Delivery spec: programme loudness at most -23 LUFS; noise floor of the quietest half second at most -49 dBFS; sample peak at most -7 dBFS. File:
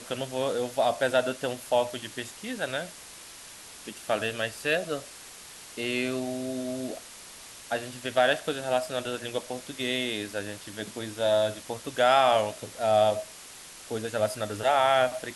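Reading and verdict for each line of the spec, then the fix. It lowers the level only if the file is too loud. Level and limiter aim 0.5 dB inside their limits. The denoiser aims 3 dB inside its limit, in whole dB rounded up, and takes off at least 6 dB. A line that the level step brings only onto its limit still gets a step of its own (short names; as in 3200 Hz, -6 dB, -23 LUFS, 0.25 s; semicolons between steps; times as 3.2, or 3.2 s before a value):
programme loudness -28.0 LUFS: OK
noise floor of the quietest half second -46 dBFS: fail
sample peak -9.0 dBFS: OK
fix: denoiser 6 dB, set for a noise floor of -46 dBFS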